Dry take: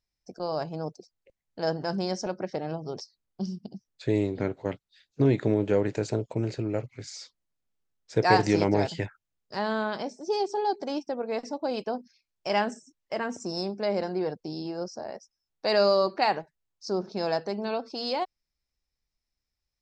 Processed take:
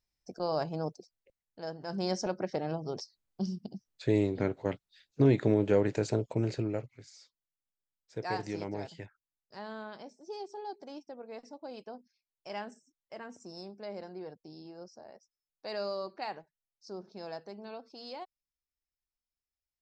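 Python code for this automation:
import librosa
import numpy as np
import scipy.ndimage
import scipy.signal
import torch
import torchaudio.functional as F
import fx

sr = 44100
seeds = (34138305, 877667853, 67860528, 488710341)

y = fx.gain(x, sr, db=fx.line((0.86, -1.0), (1.77, -13.0), (2.07, -1.5), (6.62, -1.5), (7.11, -14.0)))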